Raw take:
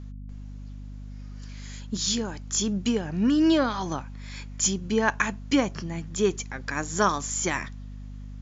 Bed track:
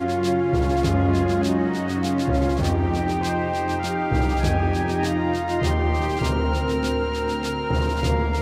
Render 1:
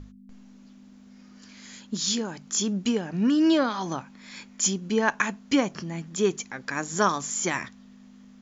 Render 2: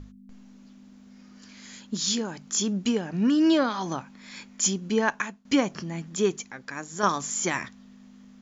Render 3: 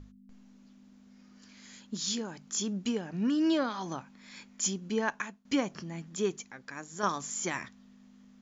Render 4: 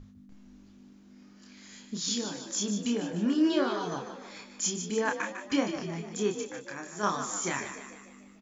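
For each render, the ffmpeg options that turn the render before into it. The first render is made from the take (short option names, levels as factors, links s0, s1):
-af "bandreject=f=50:t=h:w=6,bandreject=f=100:t=h:w=6,bandreject=f=150:t=h:w=6"
-filter_complex "[0:a]asplit=3[s0][s1][s2];[s0]atrim=end=5.45,asetpts=PTS-STARTPTS,afade=t=out:st=5.01:d=0.44:silence=0.1[s3];[s1]atrim=start=5.45:end=7.03,asetpts=PTS-STARTPTS,afade=t=in:d=0.004:c=hsin:silence=0.1,afade=t=out:st=0.76:d=0.82:c=qua:silence=0.446684[s4];[s2]atrim=start=7.03,asetpts=PTS-STARTPTS,afade=t=in:d=0.004:c=hsin:silence=0.446684[s5];[s3][s4][s5]concat=n=3:v=0:a=1"
-af "volume=0.473"
-filter_complex "[0:a]asplit=2[s0][s1];[s1]adelay=29,volume=0.631[s2];[s0][s2]amix=inputs=2:normalize=0,asplit=7[s3][s4][s5][s6][s7][s8][s9];[s4]adelay=150,afreqshift=47,volume=0.355[s10];[s5]adelay=300,afreqshift=94,volume=0.188[s11];[s6]adelay=450,afreqshift=141,volume=0.1[s12];[s7]adelay=600,afreqshift=188,volume=0.0531[s13];[s8]adelay=750,afreqshift=235,volume=0.0279[s14];[s9]adelay=900,afreqshift=282,volume=0.0148[s15];[s3][s10][s11][s12][s13][s14][s15]amix=inputs=7:normalize=0"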